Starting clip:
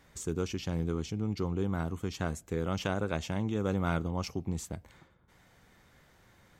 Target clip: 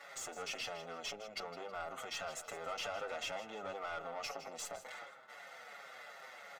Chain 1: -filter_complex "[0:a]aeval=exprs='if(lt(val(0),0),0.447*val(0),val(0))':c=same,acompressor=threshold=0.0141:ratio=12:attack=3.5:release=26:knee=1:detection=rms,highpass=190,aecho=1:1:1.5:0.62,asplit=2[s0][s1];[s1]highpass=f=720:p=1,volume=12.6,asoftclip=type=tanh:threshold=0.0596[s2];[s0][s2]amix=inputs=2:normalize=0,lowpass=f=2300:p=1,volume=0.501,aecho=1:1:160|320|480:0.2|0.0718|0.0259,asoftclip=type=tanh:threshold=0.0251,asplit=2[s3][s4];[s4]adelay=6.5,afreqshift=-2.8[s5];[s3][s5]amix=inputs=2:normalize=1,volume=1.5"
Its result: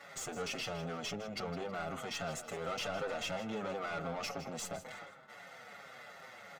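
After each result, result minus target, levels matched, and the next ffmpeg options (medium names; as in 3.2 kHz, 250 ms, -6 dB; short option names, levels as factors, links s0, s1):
250 Hz band +9.0 dB; compression: peak gain reduction -7 dB
-filter_complex "[0:a]aeval=exprs='if(lt(val(0),0),0.447*val(0),val(0))':c=same,acompressor=threshold=0.0141:ratio=12:attack=3.5:release=26:knee=1:detection=rms,highpass=440,aecho=1:1:1.5:0.62,asplit=2[s0][s1];[s1]highpass=f=720:p=1,volume=12.6,asoftclip=type=tanh:threshold=0.0596[s2];[s0][s2]amix=inputs=2:normalize=0,lowpass=f=2300:p=1,volume=0.501,aecho=1:1:160|320|480:0.2|0.0718|0.0259,asoftclip=type=tanh:threshold=0.0251,asplit=2[s3][s4];[s4]adelay=6.5,afreqshift=-2.8[s5];[s3][s5]amix=inputs=2:normalize=1,volume=1.5"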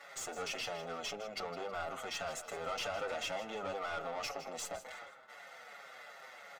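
compression: peak gain reduction -7 dB
-filter_complex "[0:a]aeval=exprs='if(lt(val(0),0),0.447*val(0),val(0))':c=same,acompressor=threshold=0.00596:ratio=12:attack=3.5:release=26:knee=1:detection=rms,highpass=440,aecho=1:1:1.5:0.62,asplit=2[s0][s1];[s1]highpass=f=720:p=1,volume=12.6,asoftclip=type=tanh:threshold=0.0596[s2];[s0][s2]amix=inputs=2:normalize=0,lowpass=f=2300:p=1,volume=0.501,aecho=1:1:160|320|480:0.2|0.0718|0.0259,asoftclip=type=tanh:threshold=0.0251,asplit=2[s3][s4];[s4]adelay=6.5,afreqshift=-2.8[s5];[s3][s5]amix=inputs=2:normalize=1,volume=1.5"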